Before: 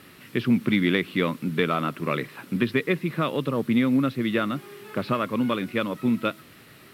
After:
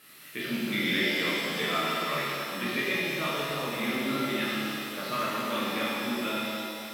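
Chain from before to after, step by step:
spectral tilt +3 dB per octave
0:03.40–0:04.44: all-pass dispersion lows, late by 92 ms, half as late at 1,400 Hz
tuned comb filter 72 Hz, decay 1.7 s, harmonics all, mix 80%
echo through a band-pass that steps 191 ms, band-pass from 520 Hz, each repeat 0.7 octaves, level −9.5 dB
reverb with rising layers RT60 2.2 s, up +7 semitones, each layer −8 dB, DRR −8 dB

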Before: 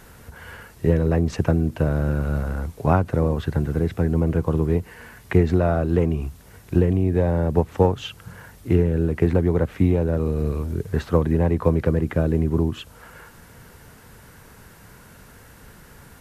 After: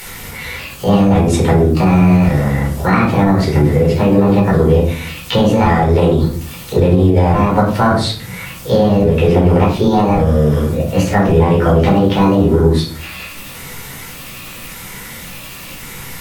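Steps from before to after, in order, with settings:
pitch shifter gated in a rhythm +3.5 semitones, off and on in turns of 564 ms
high-shelf EQ 2,200 Hz +8.5 dB
formants moved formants +5 semitones
convolution reverb RT60 0.45 s, pre-delay 8 ms, DRR −4 dB
boost into a limiter +3 dB
one half of a high-frequency compander encoder only
level −1.5 dB

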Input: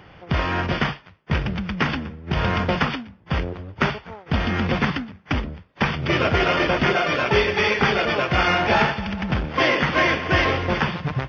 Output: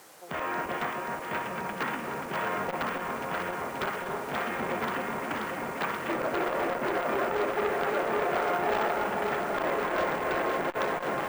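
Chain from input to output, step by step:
high-pass filter 380 Hz 12 dB per octave
treble cut that deepens with the level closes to 1,200 Hz, closed at −18 dBFS
low-pass filter 2,000 Hz 12 dB per octave
background noise blue −46 dBFS
flanger 0.82 Hz, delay 8.6 ms, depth 6.4 ms, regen +70%
wave folding −21 dBFS
delay that swaps between a low-pass and a high-pass 266 ms, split 950 Hz, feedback 90%, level −4 dB
on a send at −9.5 dB: convolution reverb RT60 1.7 s, pre-delay 217 ms
on the sum: bad sample-rate conversion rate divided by 2×, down filtered, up hold
saturating transformer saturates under 1,300 Hz

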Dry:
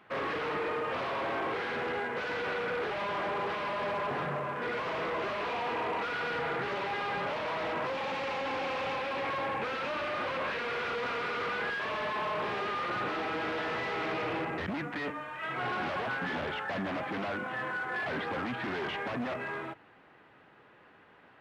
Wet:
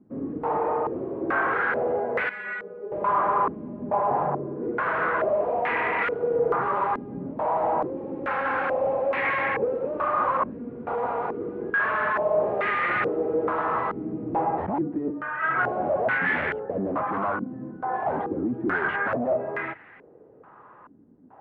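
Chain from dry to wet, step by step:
0:02.29–0:02.92: stiff-string resonator 200 Hz, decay 0.22 s, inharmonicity 0.002
low-pass on a step sequencer 2.3 Hz 260–2,000 Hz
level +4 dB

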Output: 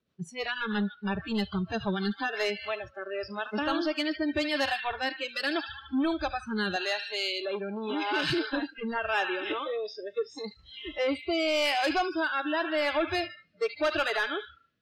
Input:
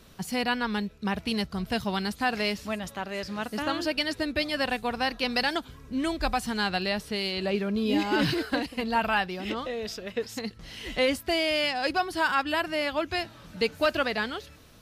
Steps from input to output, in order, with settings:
on a send: delay with a high-pass on its return 74 ms, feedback 71%, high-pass 1,600 Hz, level −8.5 dB
on the sum: rotating-speaker cabinet horn 6.3 Hz, later 0.85 Hz, at 0:02.02
high-pass filter 100 Hz 12 dB per octave
high-frequency loss of the air 120 metres
soft clipping −27 dBFS, distortion −12 dB
noise reduction from a noise print of the clip's start 28 dB
0:06.76–0:08.30: meter weighting curve A
level +6 dB

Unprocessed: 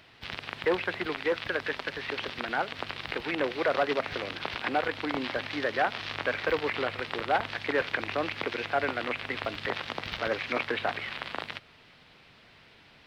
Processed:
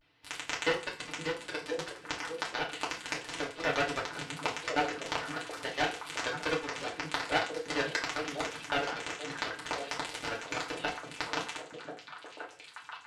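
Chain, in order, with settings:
in parallel at +1 dB: downward compressor, threshold −38 dBFS, peak gain reduction 16 dB
on the sum: harmonic generator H 3 −9 dB, 4 −39 dB, 6 −32 dB, 8 −39 dB, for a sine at −11.5 dBFS
pitch vibrato 0.4 Hz 54 cents
echo through a band-pass that steps 519 ms, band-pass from 180 Hz, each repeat 1.4 octaves, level −1 dB
feedback delay network reverb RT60 0.38 s, low-frequency decay 0.8×, high-frequency decay 0.85×, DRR −4 dB
level −1 dB

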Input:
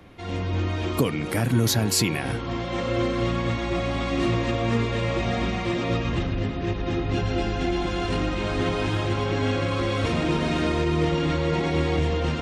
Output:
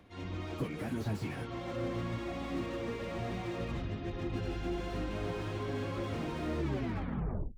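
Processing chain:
turntable brake at the end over 1.62 s
time stretch by phase vocoder 0.61×
slew-rate limiting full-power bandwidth 34 Hz
level −8.5 dB

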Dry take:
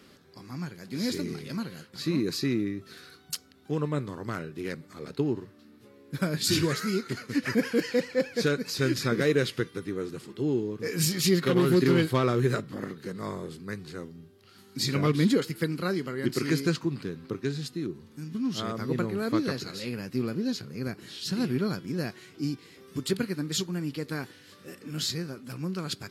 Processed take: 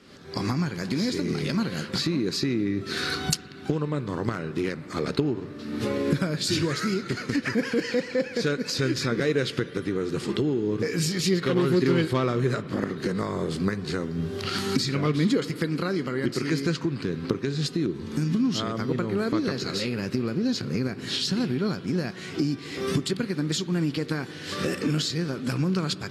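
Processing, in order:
camcorder AGC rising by 55 dB per second
low-pass filter 8,000 Hz 12 dB per octave
on a send: convolution reverb RT60 4.5 s, pre-delay 53 ms, DRR 14.5 dB

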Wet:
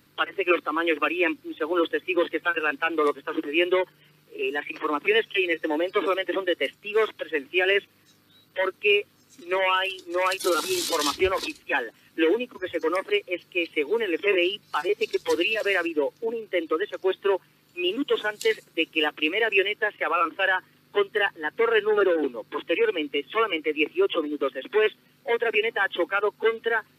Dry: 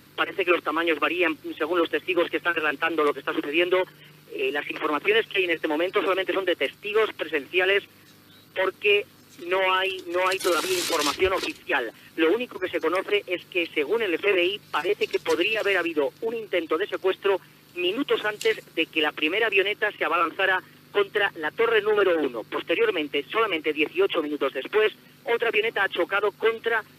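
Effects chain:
noise reduction from a noise print of the clip's start 8 dB

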